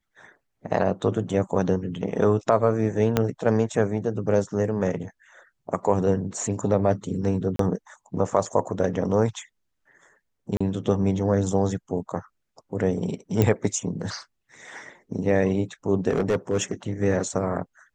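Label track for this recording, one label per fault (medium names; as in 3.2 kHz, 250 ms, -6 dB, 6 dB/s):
3.170000	3.170000	pop -6 dBFS
7.560000	7.590000	dropout 33 ms
10.570000	10.610000	dropout 35 ms
13.420000	13.420000	pop -8 dBFS
16.090000	16.720000	clipped -17 dBFS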